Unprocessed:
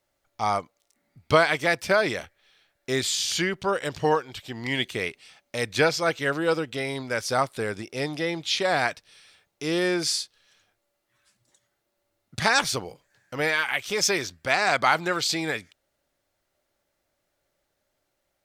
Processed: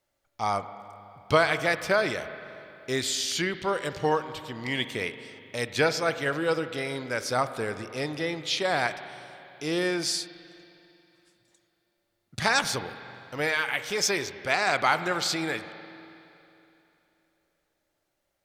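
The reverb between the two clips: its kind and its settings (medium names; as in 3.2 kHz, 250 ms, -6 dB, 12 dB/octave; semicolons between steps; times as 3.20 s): spring tank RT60 3 s, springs 40/49 ms, chirp 20 ms, DRR 11 dB; trim -2.5 dB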